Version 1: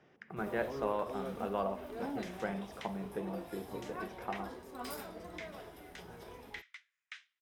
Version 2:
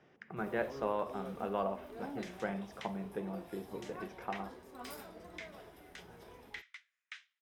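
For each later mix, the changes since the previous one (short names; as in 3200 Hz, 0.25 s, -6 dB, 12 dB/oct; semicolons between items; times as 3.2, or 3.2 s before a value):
first sound -4.5 dB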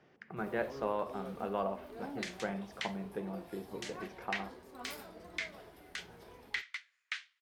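second sound +9.5 dB; master: remove notch 4400 Hz, Q 11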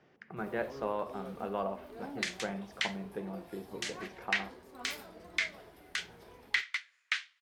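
second sound +7.0 dB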